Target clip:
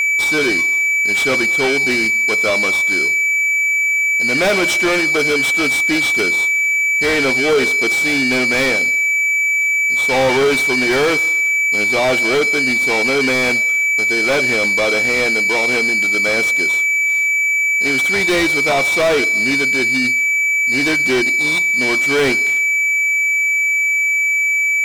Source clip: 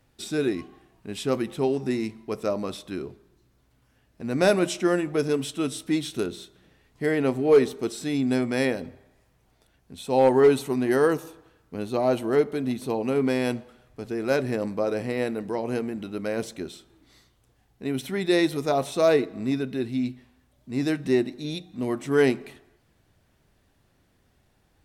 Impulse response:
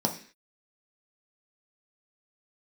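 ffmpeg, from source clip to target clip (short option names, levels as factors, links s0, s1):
-filter_complex "[0:a]aeval=exprs='val(0)+0.0398*sin(2*PI*2300*n/s)':c=same,asplit=2[s0][s1];[s1]highpass=f=720:p=1,volume=25.1,asoftclip=type=tanh:threshold=0.376[s2];[s0][s2]amix=inputs=2:normalize=0,lowpass=f=5900:p=1,volume=0.501"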